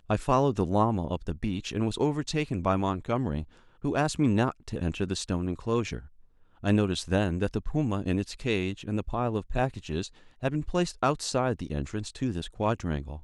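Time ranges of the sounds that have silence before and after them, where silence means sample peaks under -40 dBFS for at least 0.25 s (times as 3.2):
3.84–6.06
6.63–10.08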